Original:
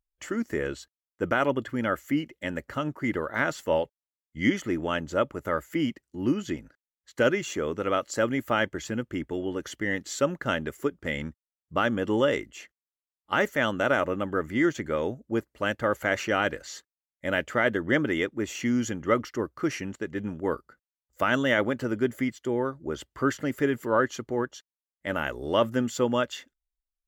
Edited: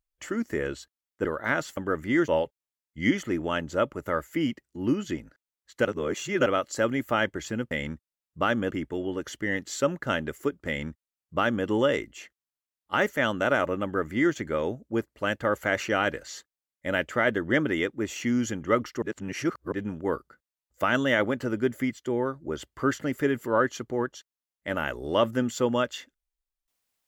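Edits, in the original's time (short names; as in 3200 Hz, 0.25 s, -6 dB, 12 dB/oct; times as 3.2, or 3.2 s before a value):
1.25–3.15 cut
7.24–7.85 reverse
11.06–12.06 copy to 9.1
14.23–14.74 copy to 3.67
19.41–20.11 reverse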